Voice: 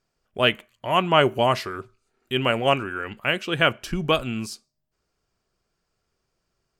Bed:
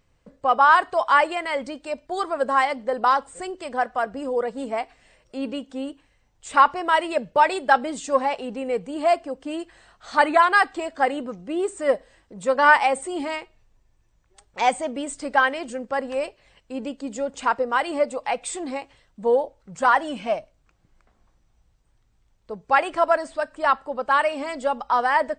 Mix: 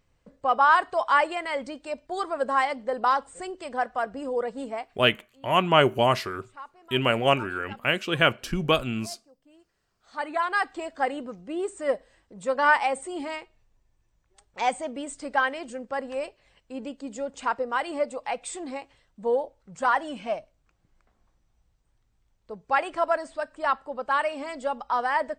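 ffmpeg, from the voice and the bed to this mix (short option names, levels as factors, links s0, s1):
-filter_complex "[0:a]adelay=4600,volume=0.891[s0];[1:a]volume=8.41,afade=t=out:st=4.6:d=0.54:silence=0.0668344,afade=t=in:st=9.93:d=0.9:silence=0.0794328[s1];[s0][s1]amix=inputs=2:normalize=0"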